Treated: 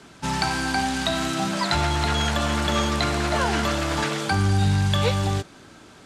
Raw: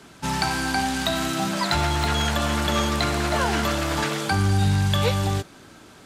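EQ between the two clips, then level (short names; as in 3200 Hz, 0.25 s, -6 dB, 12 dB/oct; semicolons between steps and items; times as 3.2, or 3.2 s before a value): LPF 9900 Hz 12 dB/oct; 0.0 dB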